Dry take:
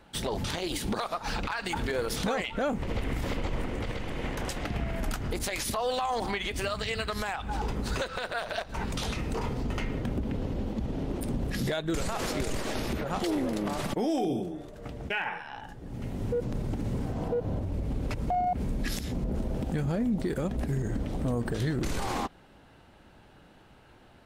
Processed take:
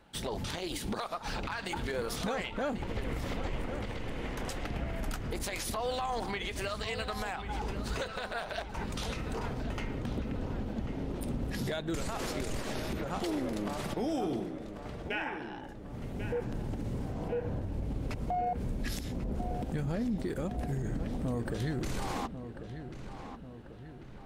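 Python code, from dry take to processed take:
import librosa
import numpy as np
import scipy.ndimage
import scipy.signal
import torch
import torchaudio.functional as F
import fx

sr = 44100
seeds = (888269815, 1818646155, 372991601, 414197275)

y = fx.echo_filtered(x, sr, ms=1092, feedback_pct=54, hz=3100.0, wet_db=-10)
y = y * librosa.db_to_amplitude(-4.5)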